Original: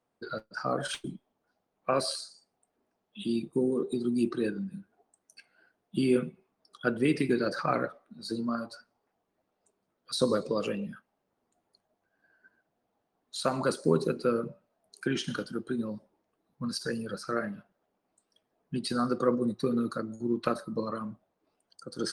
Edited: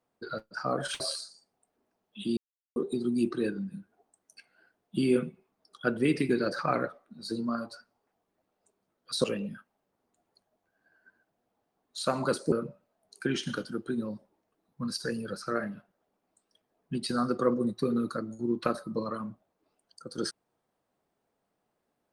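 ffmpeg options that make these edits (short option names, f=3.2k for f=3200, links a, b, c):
-filter_complex "[0:a]asplit=6[a][b][c][d][e][f];[a]atrim=end=1.002[g];[b]atrim=start=1.998:end=3.37,asetpts=PTS-STARTPTS,afade=t=out:st=1.368:d=0.004:c=hsin[h];[c]atrim=start=3.37:end=3.76,asetpts=PTS-STARTPTS,volume=0[i];[d]atrim=start=3.76:end=10.242,asetpts=PTS-STARTPTS,afade=t=in:d=0.004:c=hsin[j];[e]atrim=start=10.618:end=13.902[k];[f]atrim=start=14.328[l];[h][i][j]concat=n=3:v=0:a=1[m];[g][m]acrossfade=d=0.004:c1=hsin:c2=hsin[n];[n][k]acrossfade=d=0.004:c1=hsin:c2=hsin[o];[o][l]acrossfade=d=0.004:c1=hsin:c2=hsin"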